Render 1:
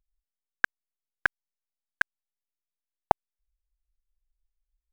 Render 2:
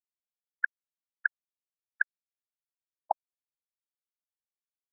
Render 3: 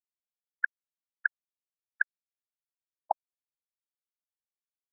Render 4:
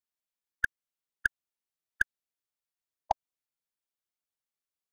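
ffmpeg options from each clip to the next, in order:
ffmpeg -i in.wav -af "asoftclip=type=tanh:threshold=-18.5dB,afftfilt=real='re*gte(hypot(re,im),0.126)':imag='im*gte(hypot(re,im),0.126)':win_size=1024:overlap=0.75,volume=5dB" out.wav
ffmpeg -i in.wav -af anull out.wav
ffmpeg -i in.wav -af "aeval=exprs='0.282*(cos(1*acos(clip(val(0)/0.282,-1,1)))-cos(1*PI/2))+0.01*(cos(5*acos(clip(val(0)/0.282,-1,1)))-cos(5*PI/2))+0.002*(cos(7*acos(clip(val(0)/0.282,-1,1)))-cos(7*PI/2))+0.0158*(cos(8*acos(clip(val(0)/0.282,-1,1)))-cos(8*PI/2))':channel_layout=same" out.wav

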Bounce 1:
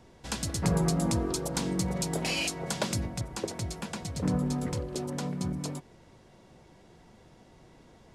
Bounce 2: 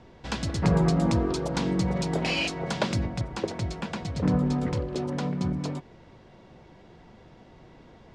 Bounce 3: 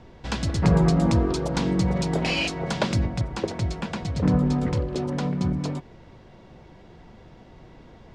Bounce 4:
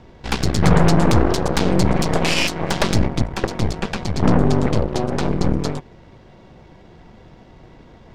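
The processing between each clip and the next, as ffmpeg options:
ffmpeg -i in.wav -af "lowpass=4000,volume=4.5dB" out.wav
ffmpeg -i in.wav -af "lowshelf=frequency=88:gain=6,volume=2dB" out.wav
ffmpeg -i in.wav -af "aeval=exprs='0.422*(cos(1*acos(clip(val(0)/0.422,-1,1)))-cos(1*PI/2))+0.106*(cos(8*acos(clip(val(0)/0.422,-1,1)))-cos(8*PI/2))':channel_layout=same,volume=3dB" out.wav

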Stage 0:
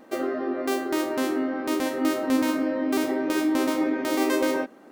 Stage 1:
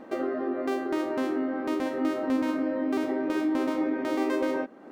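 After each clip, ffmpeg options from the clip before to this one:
ffmpeg -i in.wav -af "acompressor=threshold=-43dB:ratio=1.5,lowpass=frequency=1900:poles=1,volume=5dB" out.wav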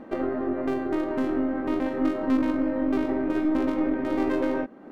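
ffmpeg -i in.wav -af "bass=frequency=250:gain=8,treble=frequency=4000:gain=-7,aeval=exprs='0.237*(cos(1*acos(clip(val(0)/0.237,-1,1)))-cos(1*PI/2))+0.015*(cos(6*acos(clip(val(0)/0.237,-1,1)))-cos(6*PI/2))':channel_layout=same" out.wav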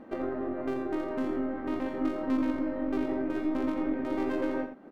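ffmpeg -i in.wav -af "aecho=1:1:85:0.355,volume=-5.5dB" out.wav

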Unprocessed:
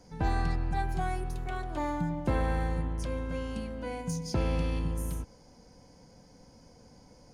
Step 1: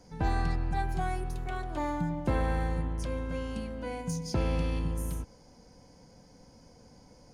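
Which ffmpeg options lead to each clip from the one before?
ffmpeg -i in.wav -af anull out.wav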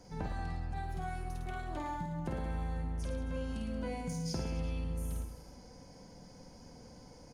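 ffmpeg -i in.wav -filter_complex "[0:a]acompressor=threshold=-37dB:ratio=6,asplit=2[link_01][link_02];[link_02]aecho=0:1:50|110|182|268.4|372.1:0.631|0.398|0.251|0.158|0.1[link_03];[link_01][link_03]amix=inputs=2:normalize=0" out.wav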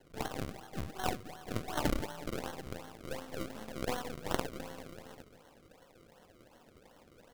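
ffmpeg -i in.wav -af "highpass=420,lowpass=7600,acrusher=samples=35:mix=1:aa=0.000001:lfo=1:lforange=35:lforate=2.7,aeval=exprs='0.0282*(cos(1*acos(clip(val(0)/0.0282,-1,1)))-cos(1*PI/2))+0.01*(cos(3*acos(clip(val(0)/0.0282,-1,1)))-cos(3*PI/2))+0.00224*(cos(4*acos(clip(val(0)/0.0282,-1,1)))-cos(4*PI/2))+0.00112*(cos(5*acos(clip(val(0)/0.0282,-1,1)))-cos(5*PI/2))':channel_layout=same,volume=16dB" out.wav

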